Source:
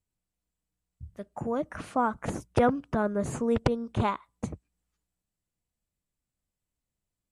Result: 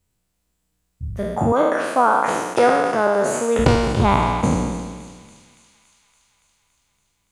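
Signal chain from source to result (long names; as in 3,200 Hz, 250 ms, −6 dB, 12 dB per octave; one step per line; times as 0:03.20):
peak hold with a decay on every bin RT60 1.55 s
0:01.52–0:03.59: high-pass filter 360 Hz 12 dB per octave
speech leveller within 3 dB 0.5 s
delay with a high-pass on its return 283 ms, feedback 71%, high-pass 3,500 Hz, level −12.5 dB
level +8.5 dB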